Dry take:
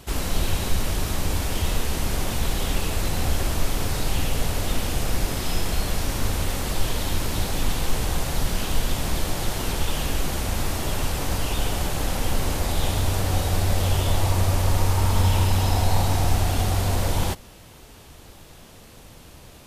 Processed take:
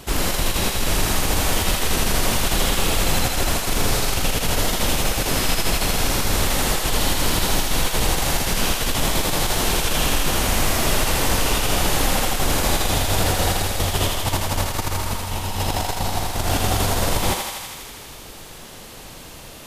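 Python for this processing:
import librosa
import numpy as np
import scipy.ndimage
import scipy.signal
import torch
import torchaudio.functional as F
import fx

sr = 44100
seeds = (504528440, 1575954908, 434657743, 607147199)

y = fx.over_compress(x, sr, threshold_db=-22.0, ratio=-0.5)
y = fx.peak_eq(y, sr, hz=75.0, db=-5.5, octaves=1.7)
y = fx.echo_thinned(y, sr, ms=81, feedback_pct=80, hz=520.0, wet_db=-3.5)
y = F.gain(torch.from_numpy(y), 4.5).numpy()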